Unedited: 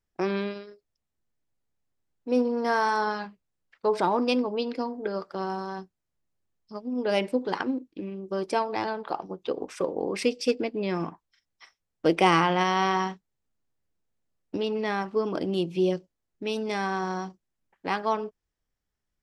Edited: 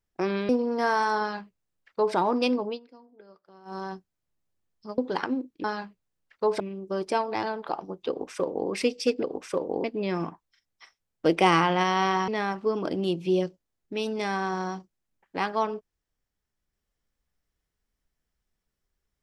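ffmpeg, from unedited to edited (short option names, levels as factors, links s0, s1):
-filter_complex "[0:a]asplit=10[s0][s1][s2][s3][s4][s5][s6][s7][s8][s9];[s0]atrim=end=0.492[s10];[s1]atrim=start=2.348:end=4.66,asetpts=PTS-STARTPTS,afade=t=out:st=2.182:d=0.13:silence=0.0841395[s11];[s2]atrim=start=4.66:end=5.51,asetpts=PTS-STARTPTS,volume=0.0841[s12];[s3]atrim=start=5.51:end=6.842,asetpts=PTS-STARTPTS,afade=t=in:d=0.13:silence=0.0841395[s13];[s4]atrim=start=7.348:end=8.012[s14];[s5]atrim=start=3.058:end=4.022[s15];[s6]atrim=start=8.008:end=10.642[s16];[s7]atrim=start=9.498:end=10.112[s17];[s8]atrim=start=10.638:end=13.082[s18];[s9]atrim=start=14.778[s19];[s11][s12][s13]concat=n=3:v=0:a=1[s20];[s10][s20]acrossfade=d=0.004:c1=hsin:c2=hsin[s21];[s21][s14]acrossfade=d=0.004:c1=hsin:c2=hsin[s22];[s22][s15]acrossfade=d=0.004:c1=hsin:c2=hsin[s23];[s23][s16]acrossfade=d=0.004:c1=hsin:c2=hsin[s24];[s24][s17]acrossfade=d=0.004:c1=hsin:c2=hsin[s25];[s25][s18]acrossfade=d=0.004:c1=hsin:c2=hsin[s26];[s26][s19]acrossfade=d=0.004:c1=hsin:c2=hsin"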